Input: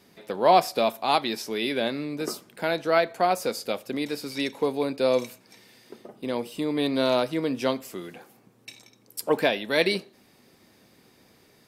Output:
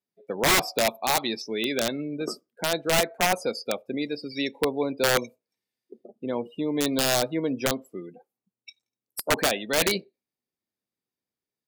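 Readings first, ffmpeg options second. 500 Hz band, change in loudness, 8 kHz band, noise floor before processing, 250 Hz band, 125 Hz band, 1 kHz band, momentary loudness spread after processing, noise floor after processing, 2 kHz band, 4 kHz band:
-2.5 dB, 0.0 dB, +11.0 dB, -59 dBFS, -0.5 dB, +2.0 dB, -3.5 dB, 11 LU, under -85 dBFS, +2.5 dB, +3.0 dB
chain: -af "afftdn=nr=36:nf=-35,highshelf=f=6.9k:g=7.5,aeval=exprs='(mod(5.31*val(0)+1,2)-1)/5.31':c=same"

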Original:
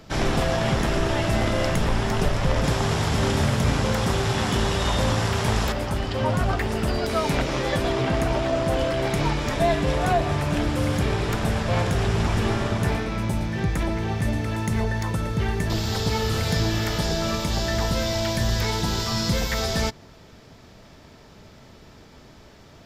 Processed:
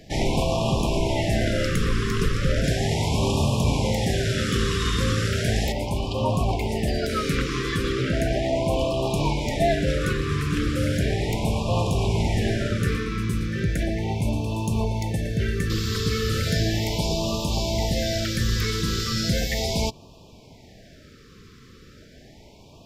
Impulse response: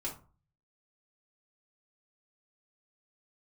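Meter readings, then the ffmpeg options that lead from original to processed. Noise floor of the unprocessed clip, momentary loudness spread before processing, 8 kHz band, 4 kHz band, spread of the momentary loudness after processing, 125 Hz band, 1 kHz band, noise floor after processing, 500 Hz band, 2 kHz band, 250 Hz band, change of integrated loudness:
-48 dBFS, 3 LU, 0.0 dB, 0.0 dB, 3 LU, 0.0 dB, -3.5 dB, -49 dBFS, -0.5 dB, -2.0 dB, 0.0 dB, -0.5 dB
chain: -af "afftfilt=real='re*(1-between(b*sr/1024,710*pow(1700/710,0.5+0.5*sin(2*PI*0.36*pts/sr))/1.41,710*pow(1700/710,0.5+0.5*sin(2*PI*0.36*pts/sr))*1.41))':imag='im*(1-between(b*sr/1024,710*pow(1700/710,0.5+0.5*sin(2*PI*0.36*pts/sr))/1.41,710*pow(1700/710,0.5+0.5*sin(2*PI*0.36*pts/sr))*1.41))':win_size=1024:overlap=0.75"

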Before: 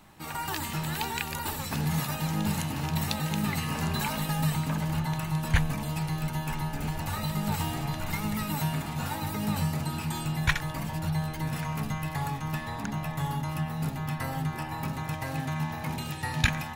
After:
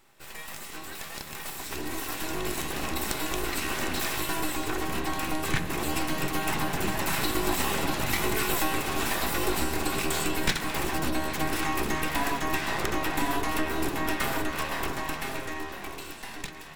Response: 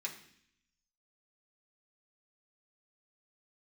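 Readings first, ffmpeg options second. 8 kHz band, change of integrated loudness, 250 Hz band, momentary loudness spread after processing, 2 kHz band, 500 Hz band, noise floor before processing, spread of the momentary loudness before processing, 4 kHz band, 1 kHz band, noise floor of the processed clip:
+5.5 dB, +1.5 dB, -0.5 dB, 11 LU, +4.5 dB, +7.5 dB, -37 dBFS, 5 LU, +4.0 dB, +3.0 dB, -41 dBFS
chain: -filter_complex "[0:a]aeval=exprs='abs(val(0))':c=same,acompressor=threshold=-30dB:ratio=3,asplit=2[a][b];[1:a]atrim=start_sample=2205[c];[b][c]afir=irnorm=-1:irlink=0,volume=-1.5dB[d];[a][d]amix=inputs=2:normalize=0,dynaudnorm=f=430:g=9:m=14dB,volume=-6.5dB"

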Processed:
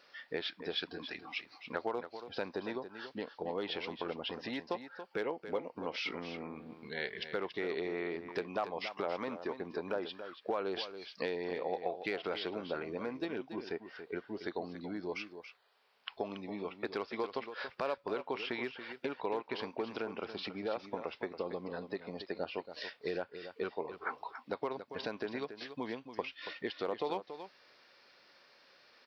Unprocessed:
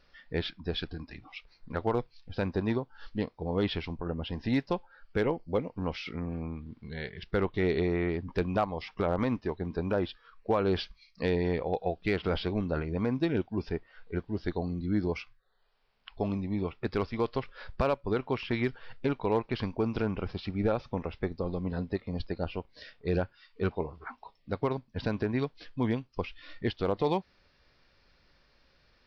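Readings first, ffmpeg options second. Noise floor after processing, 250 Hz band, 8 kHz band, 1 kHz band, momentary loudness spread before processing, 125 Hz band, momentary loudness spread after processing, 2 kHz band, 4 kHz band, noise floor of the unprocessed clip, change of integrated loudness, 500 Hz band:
-65 dBFS, -10.5 dB, n/a, -4.5 dB, 10 LU, -19.5 dB, 6 LU, -2.0 dB, -0.5 dB, -67 dBFS, -7.0 dB, -6.0 dB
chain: -af "acompressor=threshold=-35dB:ratio=6,highpass=390,aecho=1:1:281:0.299,volume=5dB"

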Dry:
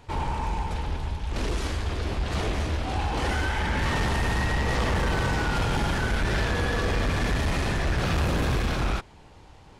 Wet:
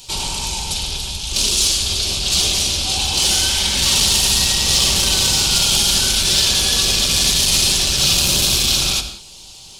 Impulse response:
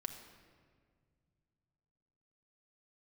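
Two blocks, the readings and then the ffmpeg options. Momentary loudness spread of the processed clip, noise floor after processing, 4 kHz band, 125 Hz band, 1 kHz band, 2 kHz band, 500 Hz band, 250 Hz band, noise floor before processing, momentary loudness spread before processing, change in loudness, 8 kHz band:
8 LU, -40 dBFS, +22.5 dB, -0.5 dB, -0.5 dB, +4.5 dB, 0.0 dB, +0.5 dB, -50 dBFS, 5 LU, +13.0 dB, +27.0 dB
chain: -filter_complex "[0:a]aexciter=amount=14.8:drive=6.8:freq=2.9k[a];[1:a]atrim=start_sample=2205,afade=t=out:st=0.24:d=0.01,atrim=end_sample=11025,asetrate=41454,aresample=44100[b];[a][b]afir=irnorm=-1:irlink=0,acontrast=36,volume=-3.5dB"

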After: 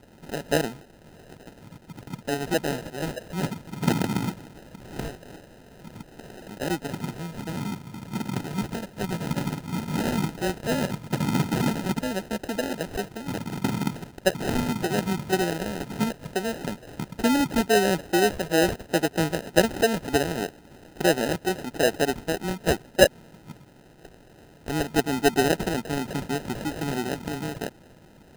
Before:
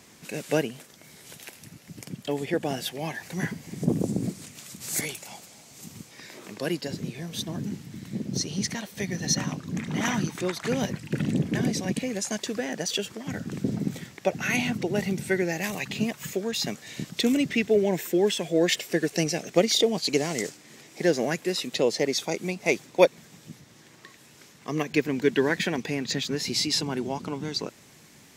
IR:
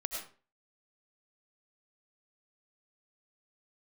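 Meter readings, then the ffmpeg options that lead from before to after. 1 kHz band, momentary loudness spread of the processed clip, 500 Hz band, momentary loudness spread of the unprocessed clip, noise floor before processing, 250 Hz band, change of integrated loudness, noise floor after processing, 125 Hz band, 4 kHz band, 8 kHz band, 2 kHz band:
+6.0 dB, 14 LU, +0.5 dB, 18 LU, -53 dBFS, +1.0 dB, +0.5 dB, -52 dBFS, +2.0 dB, -2.5 dB, -3.0 dB, +1.5 dB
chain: -filter_complex "[0:a]acrossover=split=3000[a][b];[b]acompressor=threshold=-47dB:ratio=4:attack=1:release=60[c];[a][c]amix=inputs=2:normalize=0,acrusher=samples=39:mix=1:aa=0.000001,volume=1.5dB"

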